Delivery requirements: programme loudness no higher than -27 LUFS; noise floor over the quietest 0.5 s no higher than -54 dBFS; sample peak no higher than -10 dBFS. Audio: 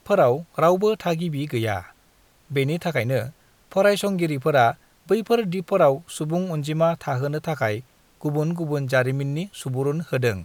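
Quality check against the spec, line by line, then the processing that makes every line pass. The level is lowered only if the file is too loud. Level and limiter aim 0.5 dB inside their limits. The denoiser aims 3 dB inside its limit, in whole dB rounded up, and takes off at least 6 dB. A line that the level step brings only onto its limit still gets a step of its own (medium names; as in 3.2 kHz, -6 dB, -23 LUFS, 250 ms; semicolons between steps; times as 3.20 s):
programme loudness -23.0 LUFS: fail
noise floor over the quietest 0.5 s -58 dBFS: pass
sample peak -5.5 dBFS: fail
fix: trim -4.5 dB; peak limiter -10.5 dBFS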